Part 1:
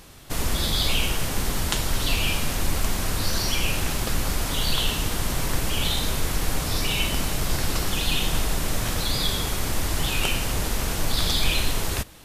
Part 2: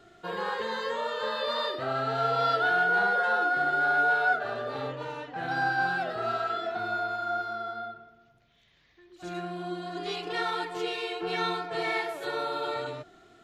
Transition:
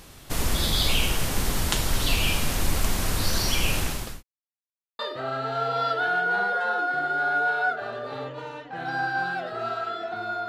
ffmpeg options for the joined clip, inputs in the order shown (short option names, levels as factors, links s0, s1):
-filter_complex "[0:a]apad=whole_dur=10.48,atrim=end=10.48,asplit=2[s0][s1];[s0]atrim=end=4.23,asetpts=PTS-STARTPTS,afade=t=out:st=3.77:d=0.46[s2];[s1]atrim=start=4.23:end=4.99,asetpts=PTS-STARTPTS,volume=0[s3];[1:a]atrim=start=1.62:end=7.11,asetpts=PTS-STARTPTS,afade=t=in:d=0.004:c=hsin[s4];[s2][s3][s4]concat=n=3:v=0:a=1"